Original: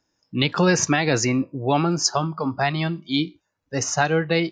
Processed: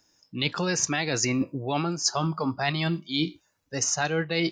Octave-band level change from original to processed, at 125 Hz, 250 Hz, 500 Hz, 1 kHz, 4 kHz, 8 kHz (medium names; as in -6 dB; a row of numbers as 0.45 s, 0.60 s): -5.5 dB, -5.5 dB, -7.0 dB, -6.5 dB, -2.5 dB, -1.5 dB